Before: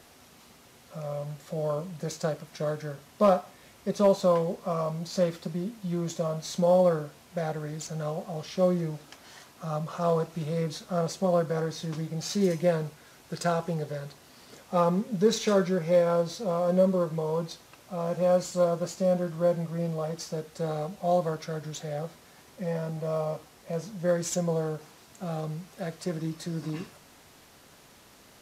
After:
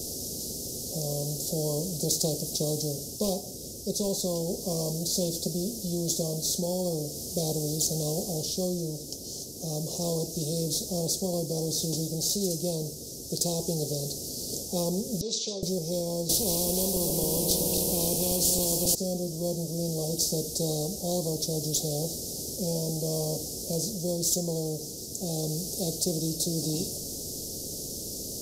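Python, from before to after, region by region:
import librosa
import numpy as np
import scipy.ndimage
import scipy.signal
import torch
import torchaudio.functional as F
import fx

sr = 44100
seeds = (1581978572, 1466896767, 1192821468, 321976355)

y = fx.chain(x, sr, fx.bandpass_q(hz=3400.0, q=0.87),
    fx.air_absorb(metres=130.0), at=(15.21, 15.63))
y = fx.chain(y, sr, fx.reverse_delay_fb(ms=135, feedback_pct=78, wet_db=-12.0),
    fx.band_shelf(hz=5200.0, db=-9.0, octaves=1.3),
    fx.spectral_comp(ratio=2.0), at=(16.29, 18.95))
y = scipy.signal.sosfilt(scipy.signal.cheby1(3, 1.0, [450.0, 5200.0], 'bandstop', fs=sr, output='sos'), y)
y = fx.rider(y, sr, range_db=4, speed_s=0.5)
y = fx.spectral_comp(y, sr, ratio=2.0)
y = y * librosa.db_to_amplitude(8.5)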